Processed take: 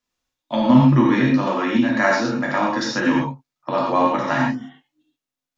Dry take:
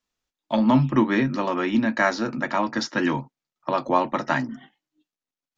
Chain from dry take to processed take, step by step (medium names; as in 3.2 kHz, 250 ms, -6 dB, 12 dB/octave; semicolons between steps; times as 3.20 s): gated-style reverb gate 150 ms flat, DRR -3 dB; trim -1 dB